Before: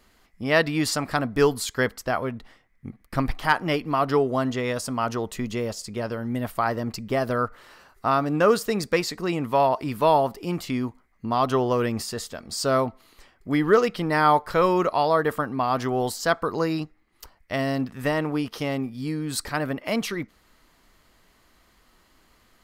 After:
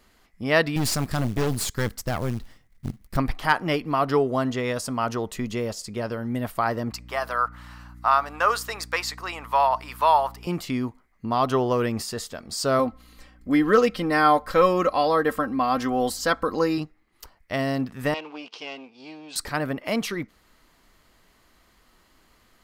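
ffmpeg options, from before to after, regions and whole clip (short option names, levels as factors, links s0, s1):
-filter_complex "[0:a]asettb=1/sr,asplit=3[s0][s1][s2];[s0]atrim=end=0.764[s3];[s1]atrim=start=0.76:end=3.17,asetpts=PTS-STARTPTS,afade=t=in:d=0.004:c=qsin,afade=t=out:st=2.406:d=0.004:c=qsin,bass=f=250:g=13,treble=f=4000:g=8,aeval=exprs='(tanh(11.2*val(0)+0.75)-tanh(0.75))/11.2':c=same,acrusher=bits=5:mode=log:mix=0:aa=0.000001[s4];[s2]atrim=start=3.166[s5];[s3][s4]acrossfade=d=0.004:c1=hsin:c2=qsin[s6];[s6][s5]acrossfade=d=0.004:c1=qsin:c2=hsin,asettb=1/sr,asplit=3[s7][s8][s9];[s7]atrim=end=6.914[s10];[s8]atrim=start=6.91:end=10.47,asetpts=PTS-STARTPTS,afade=t=in:d=0.004:c=qsin,afade=t=out:st=3.556:d=0.004:c=qsin,highpass=f=970:t=q:w=1.6,aeval=exprs='val(0)+0.00708*(sin(2*PI*60*n/s)+sin(2*PI*2*60*n/s)/2+sin(2*PI*3*60*n/s)/3+sin(2*PI*4*60*n/s)/4+sin(2*PI*5*60*n/s)/5)':c=same[s11];[s9]atrim=start=10.466[s12];[s10][s11]acrossfade=d=0.004:c1=hsin:c2=qsin[s13];[s13][s12]acrossfade=d=0.004:c1=qsin:c2=hsin,asettb=1/sr,asplit=3[s14][s15][s16];[s14]atrim=end=12.794[s17];[s15]atrim=start=12.79:end=16.78,asetpts=PTS-STARTPTS,afade=t=in:d=0.004:c=qsin,afade=t=out:st=3.986:d=0.004:c=qsin,bandreject=f=870:w=11,aeval=exprs='val(0)+0.00224*(sin(2*PI*60*n/s)+sin(2*PI*2*60*n/s)/2+sin(2*PI*3*60*n/s)/3+sin(2*PI*4*60*n/s)/4+sin(2*PI*5*60*n/s)/5)':c=same,aecho=1:1:3.8:0.59,atrim=end_sample=175959[s18];[s16]atrim=start=16.776[s19];[s17][s18]acrossfade=d=0.004:c1=hsin:c2=qsin[s20];[s20][s19]acrossfade=d=0.004:c1=qsin:c2=hsin,asettb=1/sr,asplit=3[s21][s22][s23];[s21]atrim=end=18.144[s24];[s22]atrim=start=18.14:end=19.36,asetpts=PTS-STARTPTS,afade=t=in:d=0.004:c=qsin,afade=t=out:st=1.216:d=0.004:c=qsin,aeval=exprs='if(lt(val(0),0),0.251*val(0),val(0))':c=same,highpass=490,equalizer=f=570:t=q:w=4:g=-6,equalizer=f=1300:t=q:w=4:g=-7,equalizer=f=1800:t=q:w=4:g=-9,equalizer=f=2700:t=q:w=4:g=8,lowpass=f=5900:w=0.5412,lowpass=f=5900:w=1.3066[s25];[s23]atrim=start=19.356[s26];[s24][s25]acrossfade=d=0.004:c1=hsin:c2=qsin[s27];[s27][s26]acrossfade=d=0.004:c1=qsin:c2=hsin"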